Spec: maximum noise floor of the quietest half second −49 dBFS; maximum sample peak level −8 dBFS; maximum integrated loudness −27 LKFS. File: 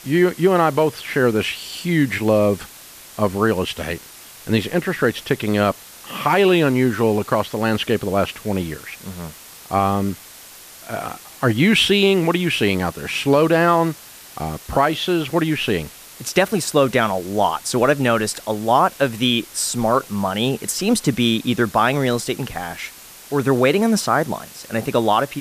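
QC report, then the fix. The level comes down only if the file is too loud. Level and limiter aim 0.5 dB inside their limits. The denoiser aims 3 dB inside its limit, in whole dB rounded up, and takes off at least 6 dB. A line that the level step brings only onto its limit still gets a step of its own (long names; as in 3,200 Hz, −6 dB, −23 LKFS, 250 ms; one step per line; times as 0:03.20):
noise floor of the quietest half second −41 dBFS: out of spec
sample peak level −4.0 dBFS: out of spec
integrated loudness −19.0 LKFS: out of spec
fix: level −8.5 dB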